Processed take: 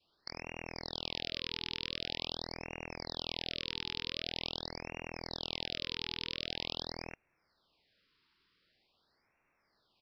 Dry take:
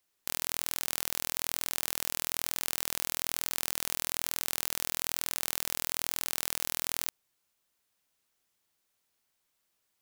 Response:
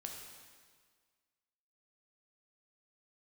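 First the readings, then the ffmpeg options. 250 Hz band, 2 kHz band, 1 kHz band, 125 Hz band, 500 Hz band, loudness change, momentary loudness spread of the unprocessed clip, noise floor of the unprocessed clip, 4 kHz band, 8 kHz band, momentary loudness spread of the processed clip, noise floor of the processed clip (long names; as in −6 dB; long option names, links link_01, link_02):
+3.0 dB, −4.0 dB, −5.5 dB, +3.0 dB, +1.0 dB, −7.5 dB, 0 LU, −79 dBFS, +0.5 dB, −26.5 dB, 7 LU, −78 dBFS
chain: -filter_complex "[0:a]asplit=2[link_01][link_02];[link_02]adelay=49,volume=-8dB[link_03];[link_01][link_03]amix=inputs=2:normalize=0,adynamicequalizer=threshold=0.00126:dfrequency=1100:dqfactor=1.7:tfrequency=1100:tqfactor=1.7:attack=5:release=100:ratio=0.375:range=3:mode=cutabove:tftype=bell,aresample=11025,asoftclip=type=hard:threshold=-32.5dB,aresample=44100,afftfilt=real='re*(1-between(b*sr/1024,600*pow(4000/600,0.5+0.5*sin(2*PI*0.45*pts/sr))/1.41,600*pow(4000/600,0.5+0.5*sin(2*PI*0.45*pts/sr))*1.41))':imag='im*(1-between(b*sr/1024,600*pow(4000/600,0.5+0.5*sin(2*PI*0.45*pts/sr))/1.41,600*pow(4000/600,0.5+0.5*sin(2*PI*0.45*pts/sr))*1.41))':win_size=1024:overlap=0.75,volume=9dB"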